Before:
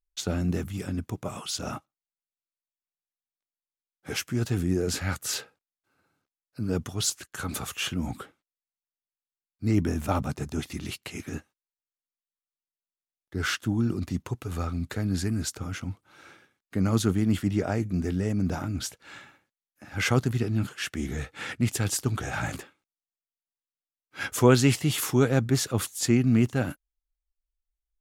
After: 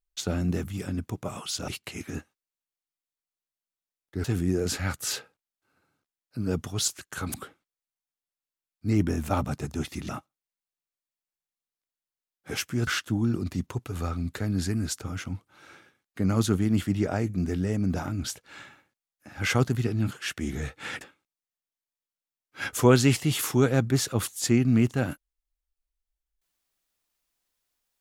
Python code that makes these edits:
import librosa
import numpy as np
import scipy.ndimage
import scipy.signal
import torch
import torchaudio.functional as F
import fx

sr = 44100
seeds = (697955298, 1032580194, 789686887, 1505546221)

y = fx.edit(x, sr, fx.swap(start_s=1.68, length_s=2.78, other_s=10.87, other_length_s=2.56),
    fx.cut(start_s=7.56, length_s=0.56),
    fx.cut(start_s=21.57, length_s=1.03), tone=tone)